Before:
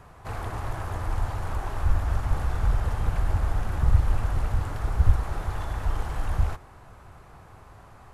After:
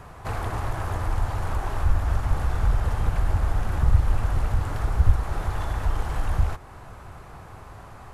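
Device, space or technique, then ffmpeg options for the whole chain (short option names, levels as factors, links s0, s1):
parallel compression: -filter_complex "[0:a]asplit=2[s0][s1];[s1]acompressor=threshold=0.0224:ratio=6,volume=1[s2];[s0][s2]amix=inputs=2:normalize=0"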